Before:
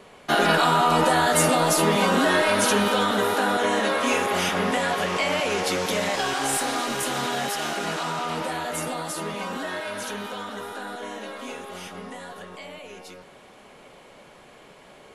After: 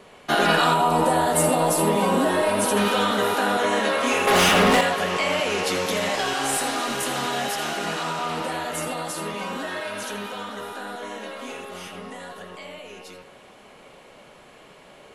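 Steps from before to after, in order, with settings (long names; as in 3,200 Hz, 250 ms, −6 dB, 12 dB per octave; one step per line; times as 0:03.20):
0:00.74–0:02.77: gain on a spectral selection 1,100–7,400 Hz −7 dB
0:04.27–0:04.81: leveller curve on the samples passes 3
on a send: convolution reverb, pre-delay 82 ms, DRR 6.5 dB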